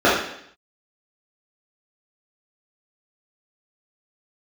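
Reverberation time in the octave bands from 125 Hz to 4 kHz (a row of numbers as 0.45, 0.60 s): 0.70, 0.70, 0.70, 0.65, 0.70, 0.75 s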